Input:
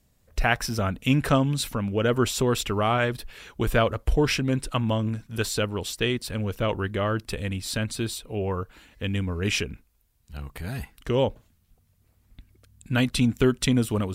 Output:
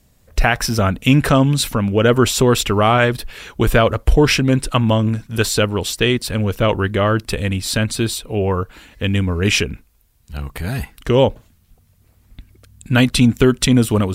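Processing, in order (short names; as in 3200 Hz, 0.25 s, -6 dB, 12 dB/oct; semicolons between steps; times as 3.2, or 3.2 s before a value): maximiser +10.5 dB; gain -1 dB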